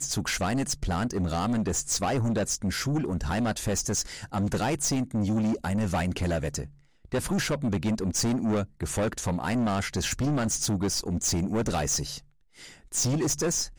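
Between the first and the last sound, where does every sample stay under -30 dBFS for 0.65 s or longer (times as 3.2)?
12.18–12.94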